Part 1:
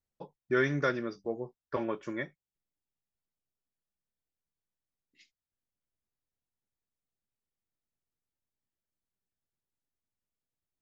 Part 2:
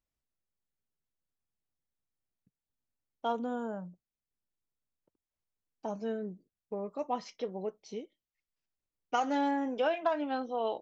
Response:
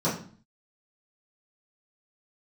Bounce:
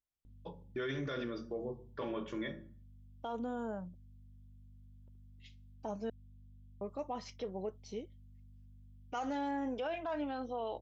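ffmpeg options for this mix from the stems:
-filter_complex "[0:a]aeval=exprs='val(0)+0.00316*(sin(2*PI*50*n/s)+sin(2*PI*2*50*n/s)/2+sin(2*PI*3*50*n/s)/3+sin(2*PI*4*50*n/s)/4+sin(2*PI*5*50*n/s)/5)':c=same,equalizer=f=3300:w=2.4:g=11.5,adelay=250,volume=0.631,asplit=2[s0][s1];[s1]volume=0.106[s2];[1:a]dynaudnorm=f=250:g=3:m=2.51,volume=0.316,asplit=3[s3][s4][s5];[s3]atrim=end=6.1,asetpts=PTS-STARTPTS,afade=t=out:st=6.096:d=0.004:c=hsin[s6];[s4]atrim=start=6.1:end=6.81,asetpts=PTS-STARTPTS,volume=0[s7];[s5]atrim=start=6.81,asetpts=PTS-STARTPTS,afade=t=in:d=0.004:c=hsin[s8];[s6][s7][s8]concat=n=3:v=0:a=1[s9];[2:a]atrim=start_sample=2205[s10];[s2][s10]afir=irnorm=-1:irlink=0[s11];[s0][s9][s11]amix=inputs=3:normalize=0,alimiter=level_in=2:limit=0.0631:level=0:latency=1:release=38,volume=0.501"

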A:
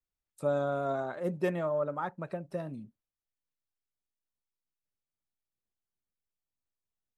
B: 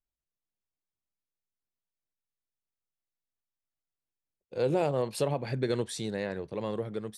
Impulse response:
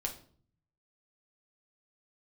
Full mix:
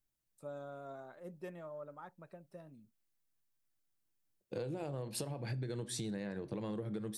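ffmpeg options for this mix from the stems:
-filter_complex "[0:a]volume=0.158[s0];[1:a]equalizer=f=125:t=o:w=0.33:g=8,equalizer=f=200:t=o:w=0.33:g=8,equalizer=f=315:t=o:w=0.33:g=6,equalizer=f=1600:t=o:w=0.33:g=3,acompressor=threshold=0.0251:ratio=6,volume=0.891,asplit=2[s1][s2];[s2]volume=0.422[s3];[2:a]atrim=start_sample=2205[s4];[s3][s4]afir=irnorm=-1:irlink=0[s5];[s0][s1][s5]amix=inputs=3:normalize=0,highshelf=f=6700:g=6.5,acompressor=threshold=0.0126:ratio=4"

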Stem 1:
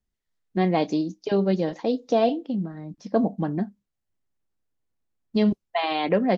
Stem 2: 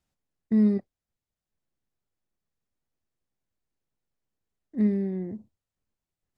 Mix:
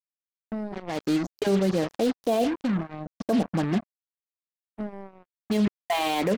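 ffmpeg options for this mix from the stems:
-filter_complex "[0:a]adelay=150,volume=1.19[s0];[1:a]acompressor=threshold=0.0794:ratio=12,volume=0.422,asplit=2[s1][s2];[s2]apad=whole_len=287576[s3];[s0][s3]sidechaincompress=threshold=0.00282:ratio=16:attack=27:release=298[s4];[s4][s1]amix=inputs=2:normalize=0,acrusher=bits=4:mix=0:aa=0.5,alimiter=limit=0.168:level=0:latency=1:release=11"

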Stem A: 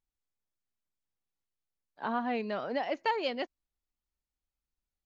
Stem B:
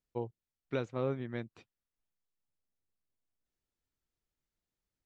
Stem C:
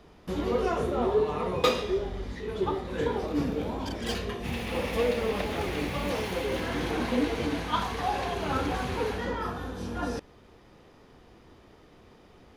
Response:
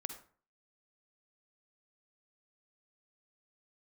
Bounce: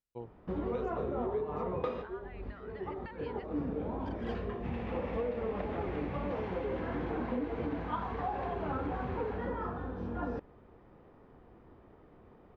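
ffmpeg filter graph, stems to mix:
-filter_complex "[0:a]acompressor=threshold=0.0251:ratio=3,bandpass=f=1600:t=q:w=1.7:csg=0,volume=0.376,asplit=2[s0][s1];[1:a]volume=0.447[s2];[2:a]lowpass=1400,adelay=200,volume=0.75[s3];[s1]apad=whole_len=563050[s4];[s3][s4]sidechaincompress=threshold=0.00126:ratio=8:attack=12:release=183[s5];[s0][s2][s5]amix=inputs=3:normalize=0,acompressor=threshold=0.0282:ratio=5"

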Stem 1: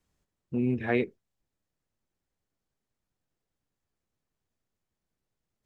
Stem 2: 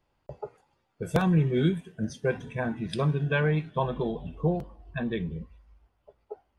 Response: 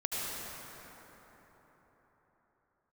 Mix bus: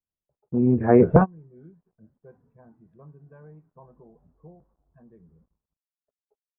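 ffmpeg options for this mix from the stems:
-filter_complex "[0:a]agate=range=0.0794:threshold=0.00251:ratio=16:detection=peak,volume=1.19,asplit=2[s0][s1];[1:a]acrusher=bits=7:mix=0:aa=0.5,volume=0.841[s2];[s1]apad=whole_len=290227[s3];[s2][s3]sidechaingate=range=0.0178:threshold=0.00316:ratio=16:detection=peak[s4];[s0][s4]amix=inputs=2:normalize=0,lowpass=f=1200:w=0.5412,lowpass=f=1200:w=1.3066,dynaudnorm=f=170:g=9:m=5.01"

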